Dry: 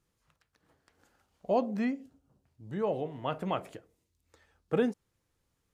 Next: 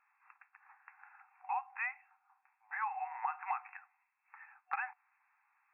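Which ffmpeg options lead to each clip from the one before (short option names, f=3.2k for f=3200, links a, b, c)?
-af "afftfilt=real='re*between(b*sr/4096,740,2700)':imag='im*between(b*sr/4096,740,2700)':win_size=4096:overlap=0.75,acompressor=threshold=-46dB:ratio=12,volume=12.5dB"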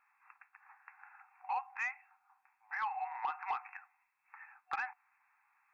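-af "asoftclip=type=tanh:threshold=-28.5dB,volume=1.5dB"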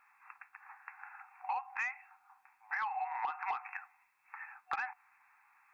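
-af "acompressor=threshold=-40dB:ratio=6,volume=6.5dB"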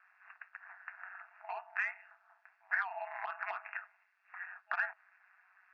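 -af "highpass=f=420:w=0.5412,highpass=f=420:w=1.3066,equalizer=f=450:t=q:w=4:g=-6,equalizer=f=650:t=q:w=4:g=-6,equalizer=f=1k:t=q:w=4:g=-10,equalizer=f=1.6k:t=q:w=4:g=9,equalizer=f=2.3k:t=q:w=4:g=-5,equalizer=f=3.7k:t=q:w=4:g=-4,lowpass=f=4.8k:w=0.5412,lowpass=f=4.8k:w=1.3066,aeval=exprs='val(0)*sin(2*PI*94*n/s)':c=same,volume=3dB"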